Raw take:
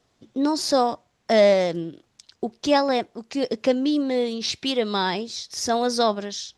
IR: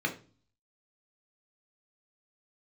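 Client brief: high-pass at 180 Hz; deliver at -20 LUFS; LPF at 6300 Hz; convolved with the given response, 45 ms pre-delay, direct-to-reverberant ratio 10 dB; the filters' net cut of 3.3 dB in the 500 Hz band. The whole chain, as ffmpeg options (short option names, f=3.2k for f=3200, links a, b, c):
-filter_complex "[0:a]highpass=180,lowpass=6.3k,equalizer=f=500:t=o:g=-4,asplit=2[a][b];[1:a]atrim=start_sample=2205,adelay=45[c];[b][c]afir=irnorm=-1:irlink=0,volume=-17.5dB[d];[a][d]amix=inputs=2:normalize=0,volume=5dB"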